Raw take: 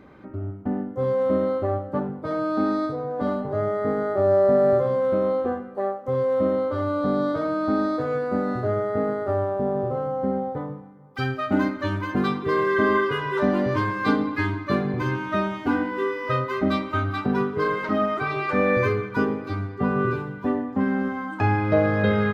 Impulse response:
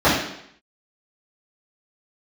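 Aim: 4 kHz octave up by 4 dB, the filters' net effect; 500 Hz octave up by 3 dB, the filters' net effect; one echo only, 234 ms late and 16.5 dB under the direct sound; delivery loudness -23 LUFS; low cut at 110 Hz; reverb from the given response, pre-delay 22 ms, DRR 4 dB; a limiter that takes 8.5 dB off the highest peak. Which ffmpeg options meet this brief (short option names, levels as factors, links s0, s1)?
-filter_complex "[0:a]highpass=110,equalizer=f=500:t=o:g=3.5,equalizer=f=4000:t=o:g=5,alimiter=limit=0.2:level=0:latency=1,aecho=1:1:234:0.15,asplit=2[s0][s1];[1:a]atrim=start_sample=2205,adelay=22[s2];[s1][s2]afir=irnorm=-1:irlink=0,volume=0.0398[s3];[s0][s3]amix=inputs=2:normalize=0,volume=0.841"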